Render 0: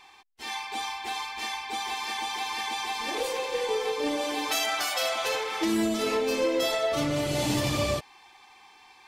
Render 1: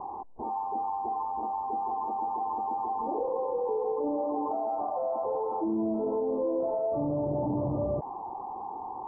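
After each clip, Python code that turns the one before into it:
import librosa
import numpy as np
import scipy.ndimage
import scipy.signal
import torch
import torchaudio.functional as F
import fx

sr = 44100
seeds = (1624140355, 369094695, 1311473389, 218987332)

y = scipy.signal.sosfilt(scipy.signal.butter(12, 1000.0, 'lowpass', fs=sr, output='sos'), x)
y = fx.low_shelf(y, sr, hz=76.0, db=-8.0)
y = fx.env_flatten(y, sr, amount_pct=70)
y = y * 10.0 ** (-4.0 / 20.0)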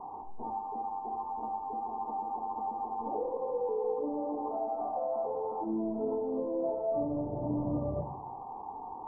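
y = fx.room_shoebox(x, sr, seeds[0], volume_m3=600.0, walls='furnished', distance_m=1.7)
y = y * 10.0 ** (-6.0 / 20.0)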